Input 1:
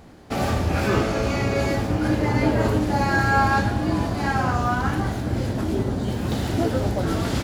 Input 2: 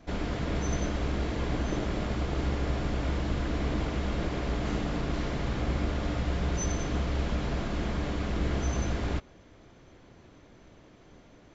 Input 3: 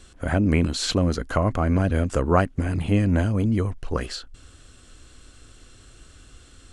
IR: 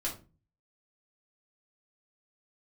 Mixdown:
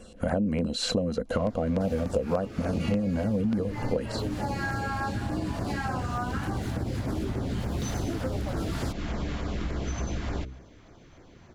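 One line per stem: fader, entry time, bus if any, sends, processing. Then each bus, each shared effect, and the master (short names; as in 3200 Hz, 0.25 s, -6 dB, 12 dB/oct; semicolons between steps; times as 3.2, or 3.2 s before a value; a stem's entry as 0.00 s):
+1.5 dB, 1.50 s, bus A, no send, dry
+3.0 dB, 1.25 s, bus A, no send, de-hum 64.03 Hz, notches 9; auto duck -9 dB, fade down 1.70 s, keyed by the third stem
-2.5 dB, 0.00 s, no bus, no send, bell 630 Hz +8.5 dB 1.1 oct; small resonant body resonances 210/490/2800/4000 Hz, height 14 dB, ringing for 50 ms
bus A: 0.0 dB, compressor, threshold -26 dBFS, peak gain reduction 12.5 dB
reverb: off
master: LFO notch saw down 3.4 Hz 280–4200 Hz; compressor 8:1, threshold -24 dBFS, peak gain reduction 18.5 dB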